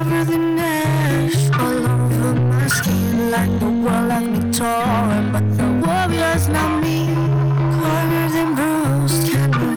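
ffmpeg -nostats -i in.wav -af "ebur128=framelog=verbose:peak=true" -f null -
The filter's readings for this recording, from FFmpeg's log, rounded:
Integrated loudness:
  I:         -17.4 LUFS
  Threshold: -27.4 LUFS
Loudness range:
  LRA:         0.5 LU
  Threshold: -37.4 LUFS
  LRA low:   -17.7 LUFS
  LRA high:  -17.2 LUFS
True peak:
  Peak:      -10.8 dBFS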